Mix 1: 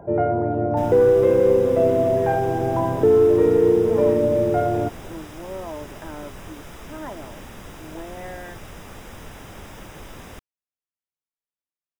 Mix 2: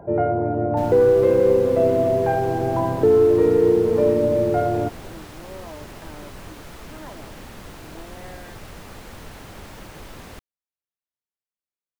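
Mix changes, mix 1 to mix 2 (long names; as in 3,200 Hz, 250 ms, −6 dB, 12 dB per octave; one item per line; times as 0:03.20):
speech −6.0 dB
master: remove Butterworth band-reject 4,300 Hz, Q 5.9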